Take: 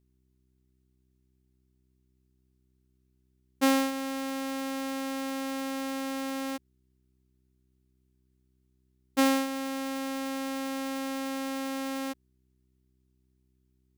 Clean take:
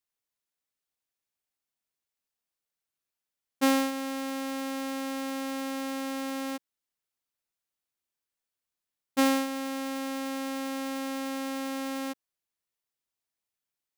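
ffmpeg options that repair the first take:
-af "bandreject=f=63.6:t=h:w=4,bandreject=f=127.2:t=h:w=4,bandreject=f=190.8:t=h:w=4,bandreject=f=254.4:t=h:w=4,bandreject=f=318:t=h:w=4,bandreject=f=381.6:t=h:w=4"

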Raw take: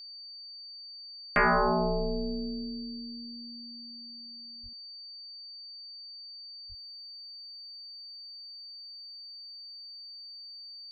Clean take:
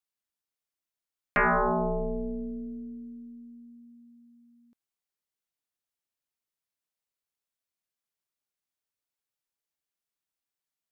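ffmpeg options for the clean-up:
-filter_complex "[0:a]bandreject=f=4.6k:w=30,asplit=3[a][b][c];[a]afade=t=out:st=4.62:d=0.02[d];[b]highpass=f=140:w=0.5412,highpass=f=140:w=1.3066,afade=t=in:st=4.62:d=0.02,afade=t=out:st=4.74:d=0.02[e];[c]afade=t=in:st=4.74:d=0.02[f];[d][e][f]amix=inputs=3:normalize=0,asplit=3[g][h][i];[g]afade=t=out:st=6.68:d=0.02[j];[h]highpass=f=140:w=0.5412,highpass=f=140:w=1.3066,afade=t=in:st=6.68:d=0.02,afade=t=out:st=6.8:d=0.02[k];[i]afade=t=in:st=6.8:d=0.02[l];[j][k][l]amix=inputs=3:normalize=0,asetnsamples=n=441:p=0,asendcmd='6.74 volume volume -8dB',volume=0dB"

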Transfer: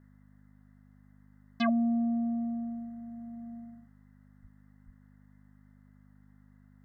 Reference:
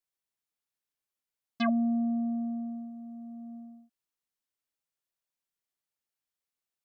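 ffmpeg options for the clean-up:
-filter_complex "[0:a]bandreject=f=50.6:t=h:w=4,bandreject=f=101.2:t=h:w=4,bandreject=f=151.8:t=h:w=4,bandreject=f=202.4:t=h:w=4,bandreject=f=253:t=h:w=4,asplit=3[a][b][c];[a]afade=t=out:st=4.41:d=0.02[d];[b]highpass=f=140:w=0.5412,highpass=f=140:w=1.3066,afade=t=in:st=4.41:d=0.02,afade=t=out:st=4.53:d=0.02[e];[c]afade=t=in:st=4.53:d=0.02[f];[d][e][f]amix=inputs=3:normalize=0,asplit=3[g][h][i];[g]afade=t=out:st=4.85:d=0.02[j];[h]highpass=f=140:w=0.5412,highpass=f=140:w=1.3066,afade=t=in:st=4.85:d=0.02,afade=t=out:st=4.97:d=0.02[k];[i]afade=t=in:st=4.97:d=0.02[l];[j][k][l]amix=inputs=3:normalize=0,afftdn=nr=30:nf=-59"

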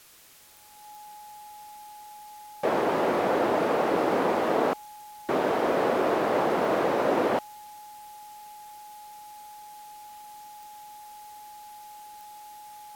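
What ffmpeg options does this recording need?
-af "adeclick=t=4,bandreject=f=840:w=30,afwtdn=0.0022"

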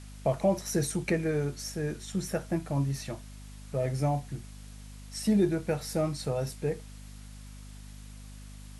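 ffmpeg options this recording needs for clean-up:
-af "bandreject=f=50.6:t=h:w=4,bandreject=f=101.2:t=h:w=4,bandreject=f=151.8:t=h:w=4,bandreject=f=202.4:t=h:w=4,bandreject=f=253:t=h:w=4,afwtdn=0.002"

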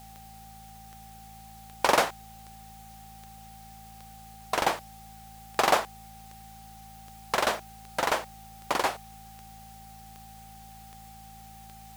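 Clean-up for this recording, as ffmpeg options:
-af "adeclick=t=4,bandreject=f=54.8:t=h:w=4,bandreject=f=109.6:t=h:w=4,bandreject=f=164.4:t=h:w=4,bandreject=f=219.2:t=h:w=4,bandreject=f=780:w=30,afftdn=nr=27:nf=-48"

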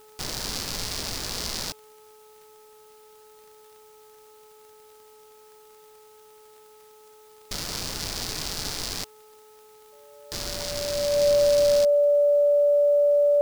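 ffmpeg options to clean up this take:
-af "adeclick=t=4,bandreject=f=429.4:t=h:w=4,bandreject=f=858.8:t=h:w=4,bandreject=f=1.2882k:t=h:w=4,bandreject=f=580:w=30,agate=range=-21dB:threshold=-44dB"

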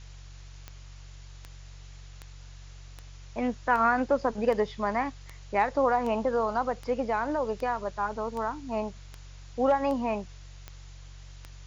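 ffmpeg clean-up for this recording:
-af "adeclick=t=4,bandreject=f=46.6:t=h:w=4,bandreject=f=93.2:t=h:w=4,bandreject=f=139.8:t=h:w=4,afftdn=nr=27:nf=-46"

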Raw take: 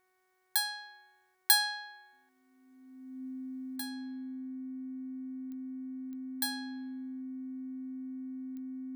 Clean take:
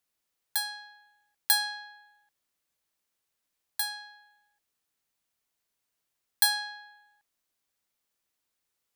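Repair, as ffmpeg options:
-af "adeclick=t=4,bandreject=f=371.4:t=h:w=4,bandreject=f=742.8:t=h:w=4,bandreject=f=1.1142k:t=h:w=4,bandreject=f=1.4856k:t=h:w=4,bandreject=f=1.857k:t=h:w=4,bandreject=f=2.2284k:t=h:w=4,bandreject=f=260:w=30,asetnsamples=n=441:p=0,asendcmd='3.76 volume volume 10.5dB',volume=0dB"

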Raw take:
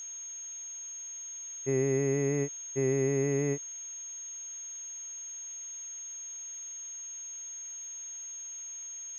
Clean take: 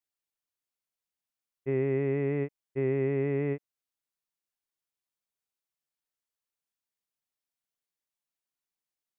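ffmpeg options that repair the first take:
-af "adeclick=t=4,bandreject=f=6.5k:w=30,afftdn=nr=30:nf=-42"

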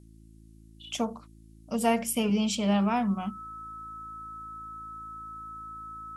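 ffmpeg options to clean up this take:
-af "bandreject=f=54.8:t=h:w=4,bandreject=f=109.6:t=h:w=4,bandreject=f=164.4:t=h:w=4,bandreject=f=219.2:t=h:w=4,bandreject=f=274:t=h:w=4,bandreject=f=328.8:t=h:w=4,bandreject=f=1.3k:w=30,agate=range=-21dB:threshold=-45dB"

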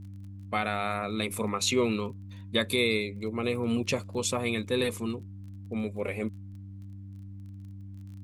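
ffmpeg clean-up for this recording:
-af "adeclick=t=4,bandreject=f=97.9:t=h:w=4,bandreject=f=195.8:t=h:w=4,bandreject=f=293.7:t=h:w=4,agate=range=-21dB:threshold=-35dB"

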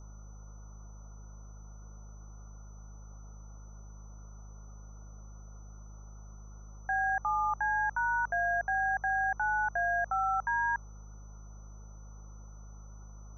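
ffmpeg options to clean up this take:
-af "bandreject=f=51.7:t=h:w=4,bandreject=f=103.4:t=h:w=4,bandreject=f=155.1:t=h:w=4,bandreject=f=206.8:t=h:w=4,bandreject=f=6k:w=30,afftdn=nr=30:nf=-48"

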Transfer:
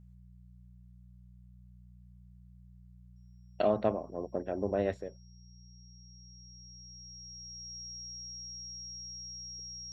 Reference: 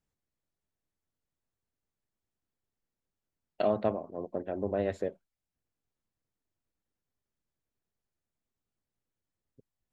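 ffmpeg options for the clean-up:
-af "bandreject=f=60.4:t=h:w=4,bandreject=f=120.8:t=h:w=4,bandreject=f=181.2:t=h:w=4,bandreject=f=5.6k:w=30,asetnsamples=n=441:p=0,asendcmd='4.94 volume volume 8.5dB',volume=0dB"

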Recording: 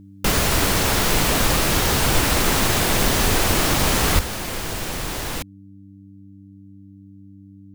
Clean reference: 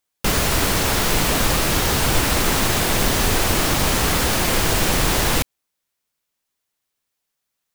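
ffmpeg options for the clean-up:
-filter_complex "[0:a]bandreject=f=98:t=h:w=4,bandreject=f=196:t=h:w=4,bandreject=f=294:t=h:w=4,asplit=3[a][b][c];[a]afade=t=out:st=4.14:d=0.02[d];[b]highpass=f=140:w=0.5412,highpass=f=140:w=1.3066,afade=t=in:st=4.14:d=0.02,afade=t=out:st=4.26:d=0.02[e];[c]afade=t=in:st=4.26:d=0.02[f];[d][e][f]amix=inputs=3:normalize=0,asetnsamples=n=441:p=0,asendcmd='4.19 volume volume 9dB',volume=0dB"

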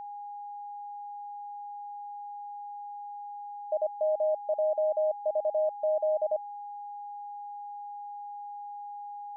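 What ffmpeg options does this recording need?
-af "bandreject=f=820:w=30"

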